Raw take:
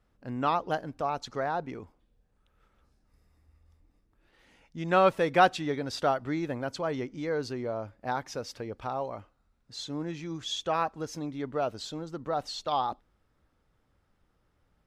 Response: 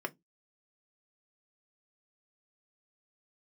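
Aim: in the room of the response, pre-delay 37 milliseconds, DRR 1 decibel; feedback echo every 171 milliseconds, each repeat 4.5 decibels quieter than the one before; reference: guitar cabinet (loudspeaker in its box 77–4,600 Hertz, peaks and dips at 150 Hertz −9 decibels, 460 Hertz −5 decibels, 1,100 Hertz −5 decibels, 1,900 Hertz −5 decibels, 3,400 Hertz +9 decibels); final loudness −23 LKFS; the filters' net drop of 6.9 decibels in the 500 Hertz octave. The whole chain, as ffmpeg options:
-filter_complex "[0:a]equalizer=frequency=500:width_type=o:gain=-6.5,aecho=1:1:171|342|513|684|855|1026|1197|1368|1539:0.596|0.357|0.214|0.129|0.0772|0.0463|0.0278|0.0167|0.01,asplit=2[link_01][link_02];[1:a]atrim=start_sample=2205,adelay=37[link_03];[link_02][link_03]afir=irnorm=-1:irlink=0,volume=-4.5dB[link_04];[link_01][link_04]amix=inputs=2:normalize=0,highpass=77,equalizer=frequency=150:width_type=q:width=4:gain=-9,equalizer=frequency=460:width_type=q:width=4:gain=-5,equalizer=frequency=1100:width_type=q:width=4:gain=-5,equalizer=frequency=1900:width_type=q:width=4:gain=-5,equalizer=frequency=3400:width_type=q:width=4:gain=9,lowpass=frequency=4600:width=0.5412,lowpass=frequency=4600:width=1.3066,volume=7dB"

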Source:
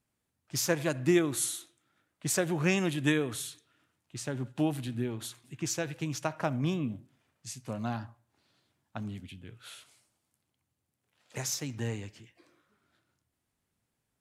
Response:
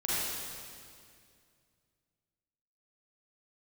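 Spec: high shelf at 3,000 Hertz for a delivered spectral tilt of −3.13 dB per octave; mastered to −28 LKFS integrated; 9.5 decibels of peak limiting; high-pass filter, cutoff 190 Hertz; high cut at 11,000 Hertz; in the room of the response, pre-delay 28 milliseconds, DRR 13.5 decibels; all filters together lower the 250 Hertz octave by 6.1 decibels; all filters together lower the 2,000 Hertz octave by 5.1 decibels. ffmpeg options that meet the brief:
-filter_complex "[0:a]highpass=190,lowpass=11000,equalizer=frequency=250:width_type=o:gain=-7.5,equalizer=frequency=2000:width_type=o:gain=-9,highshelf=frequency=3000:gain=5.5,alimiter=limit=-24dB:level=0:latency=1,asplit=2[link_01][link_02];[1:a]atrim=start_sample=2205,adelay=28[link_03];[link_02][link_03]afir=irnorm=-1:irlink=0,volume=-22dB[link_04];[link_01][link_04]amix=inputs=2:normalize=0,volume=9.5dB"

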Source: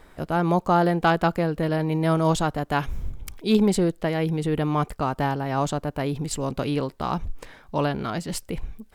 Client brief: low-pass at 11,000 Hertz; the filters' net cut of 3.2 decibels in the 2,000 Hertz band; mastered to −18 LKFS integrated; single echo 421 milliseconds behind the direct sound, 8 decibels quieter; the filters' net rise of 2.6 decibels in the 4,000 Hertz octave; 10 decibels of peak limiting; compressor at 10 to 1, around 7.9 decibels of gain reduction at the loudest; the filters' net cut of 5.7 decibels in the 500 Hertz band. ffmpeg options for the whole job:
ffmpeg -i in.wav -af "lowpass=11000,equalizer=frequency=500:width_type=o:gain=-7.5,equalizer=frequency=2000:width_type=o:gain=-5,equalizer=frequency=4000:width_type=o:gain=5,acompressor=threshold=-25dB:ratio=10,alimiter=level_in=1dB:limit=-24dB:level=0:latency=1,volume=-1dB,aecho=1:1:421:0.398,volume=17dB" out.wav

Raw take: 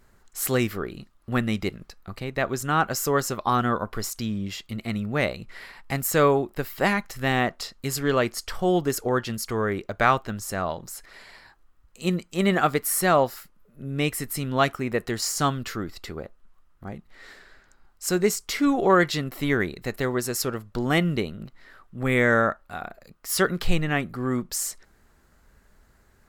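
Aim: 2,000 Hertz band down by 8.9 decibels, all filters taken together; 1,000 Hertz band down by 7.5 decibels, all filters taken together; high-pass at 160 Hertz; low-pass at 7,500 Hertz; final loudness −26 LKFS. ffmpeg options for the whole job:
ffmpeg -i in.wav -af "highpass=160,lowpass=7500,equalizer=frequency=1000:width_type=o:gain=-8,equalizer=frequency=2000:width_type=o:gain=-8.5,volume=2.5dB" out.wav

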